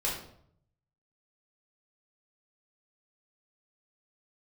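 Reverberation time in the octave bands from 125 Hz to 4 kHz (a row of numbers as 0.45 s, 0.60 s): 1.1 s, 0.75 s, 0.70 s, 0.60 s, 0.50 s, 0.45 s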